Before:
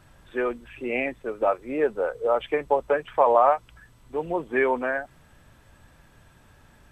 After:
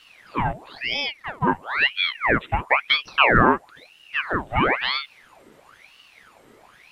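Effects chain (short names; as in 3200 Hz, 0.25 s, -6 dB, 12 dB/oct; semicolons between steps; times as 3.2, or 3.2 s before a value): 0.94–1.47 robotiser 288 Hz; dynamic EQ 3600 Hz, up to -5 dB, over -42 dBFS, Q 0.79; ring modulator with a swept carrier 1600 Hz, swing 80%, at 1 Hz; gain +5.5 dB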